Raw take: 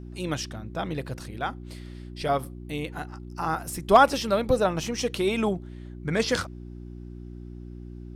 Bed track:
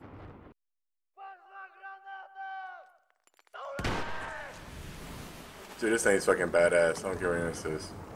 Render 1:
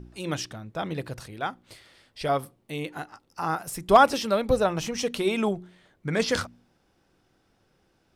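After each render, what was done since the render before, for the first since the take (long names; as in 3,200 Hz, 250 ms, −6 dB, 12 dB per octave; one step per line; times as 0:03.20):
hum removal 60 Hz, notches 6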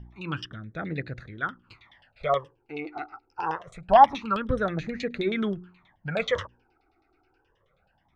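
auto-filter low-pass saw down 9.4 Hz 740–3,700 Hz
all-pass phaser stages 12, 0.25 Hz, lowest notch 170–1,000 Hz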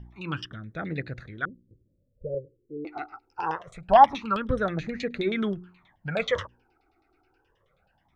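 0:01.45–0:02.85: Butterworth low-pass 550 Hz 96 dB per octave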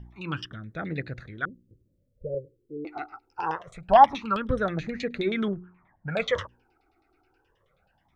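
0:05.48–0:06.10: low-pass filter 1,800 Hz 24 dB per octave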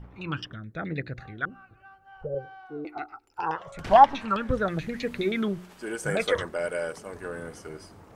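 mix in bed track −6 dB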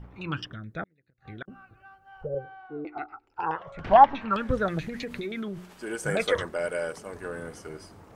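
0:00.83–0:01.48: gate with flip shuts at −27 dBFS, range −37 dB
0:02.29–0:04.33: low-pass filter 2,900 Hz
0:04.88–0:05.91: downward compressor, threshold −30 dBFS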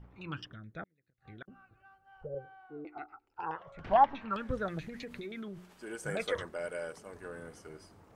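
level −8.5 dB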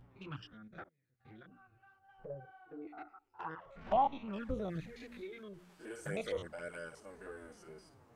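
spectrum averaged block by block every 50 ms
flanger swept by the level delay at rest 10.6 ms, full sweep at −32.5 dBFS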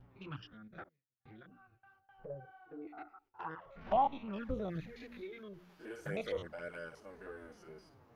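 noise gate with hold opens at −58 dBFS
parametric band 8,300 Hz −14.5 dB 0.48 octaves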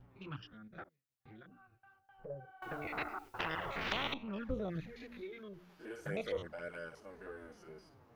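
0:02.62–0:04.14: every bin compressed towards the loudest bin 10 to 1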